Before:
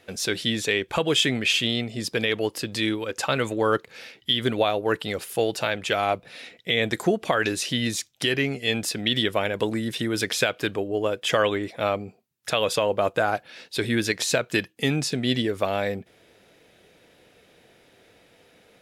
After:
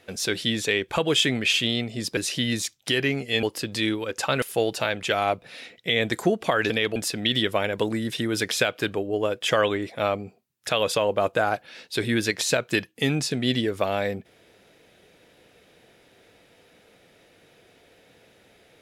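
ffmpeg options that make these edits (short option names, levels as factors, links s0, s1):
-filter_complex "[0:a]asplit=6[s0][s1][s2][s3][s4][s5];[s0]atrim=end=2.172[s6];[s1]atrim=start=7.508:end=8.772[s7];[s2]atrim=start=2.428:end=3.422[s8];[s3]atrim=start=5.228:end=7.512[s9];[s4]atrim=start=2.168:end=2.432[s10];[s5]atrim=start=8.768[s11];[s6][s7]acrossfade=d=0.004:c1=hsin:c2=hsin[s12];[s12][s8]acrossfade=d=0.004:c1=hsin:c2=hsin[s13];[s13][s9]acrossfade=d=0.004:c1=hsin:c2=hsin[s14];[s14][s10]acrossfade=d=0.004:c1=hsin:c2=hsin[s15];[s15][s11]acrossfade=d=0.004:c1=hsin:c2=hsin"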